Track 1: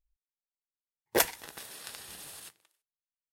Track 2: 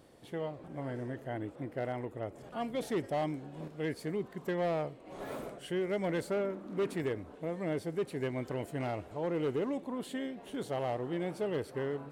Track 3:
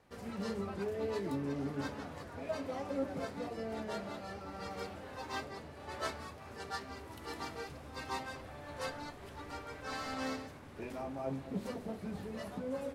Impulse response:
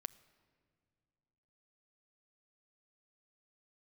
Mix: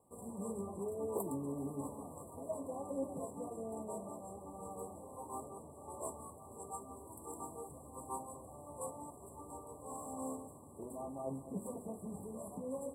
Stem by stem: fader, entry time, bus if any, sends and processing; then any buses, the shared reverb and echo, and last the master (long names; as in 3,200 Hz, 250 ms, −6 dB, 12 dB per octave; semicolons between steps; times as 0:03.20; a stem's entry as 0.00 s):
−13.5 dB, 0.00 s, no send, no processing
muted
−2.5 dB, 0.00 s, no send, high shelf with overshoot 5,700 Hz +11 dB, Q 3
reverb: not used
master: high-pass filter 110 Hz 6 dB per octave; brick-wall band-stop 1,200–7,500 Hz; high-shelf EQ 7,200 Hz −7 dB